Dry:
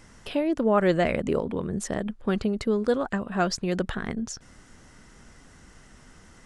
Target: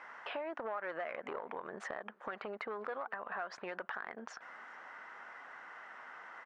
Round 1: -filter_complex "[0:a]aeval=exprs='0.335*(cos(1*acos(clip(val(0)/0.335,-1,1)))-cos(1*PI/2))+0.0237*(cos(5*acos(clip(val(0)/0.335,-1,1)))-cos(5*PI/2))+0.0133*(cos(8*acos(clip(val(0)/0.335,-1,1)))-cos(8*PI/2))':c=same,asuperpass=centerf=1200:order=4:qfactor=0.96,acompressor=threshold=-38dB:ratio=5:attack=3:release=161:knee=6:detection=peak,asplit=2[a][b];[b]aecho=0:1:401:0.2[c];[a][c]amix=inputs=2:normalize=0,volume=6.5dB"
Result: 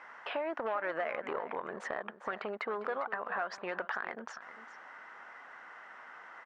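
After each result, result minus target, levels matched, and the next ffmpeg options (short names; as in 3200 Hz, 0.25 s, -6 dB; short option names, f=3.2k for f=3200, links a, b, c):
echo-to-direct +12 dB; compressor: peak gain reduction -5 dB
-filter_complex "[0:a]aeval=exprs='0.335*(cos(1*acos(clip(val(0)/0.335,-1,1)))-cos(1*PI/2))+0.0237*(cos(5*acos(clip(val(0)/0.335,-1,1)))-cos(5*PI/2))+0.0133*(cos(8*acos(clip(val(0)/0.335,-1,1)))-cos(8*PI/2))':c=same,asuperpass=centerf=1200:order=4:qfactor=0.96,acompressor=threshold=-38dB:ratio=5:attack=3:release=161:knee=6:detection=peak,asplit=2[a][b];[b]aecho=0:1:401:0.0501[c];[a][c]amix=inputs=2:normalize=0,volume=6.5dB"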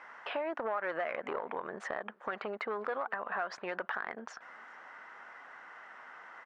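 compressor: peak gain reduction -5 dB
-filter_complex "[0:a]aeval=exprs='0.335*(cos(1*acos(clip(val(0)/0.335,-1,1)))-cos(1*PI/2))+0.0237*(cos(5*acos(clip(val(0)/0.335,-1,1)))-cos(5*PI/2))+0.0133*(cos(8*acos(clip(val(0)/0.335,-1,1)))-cos(8*PI/2))':c=same,asuperpass=centerf=1200:order=4:qfactor=0.96,acompressor=threshold=-44.5dB:ratio=5:attack=3:release=161:knee=6:detection=peak,asplit=2[a][b];[b]aecho=0:1:401:0.0501[c];[a][c]amix=inputs=2:normalize=0,volume=6.5dB"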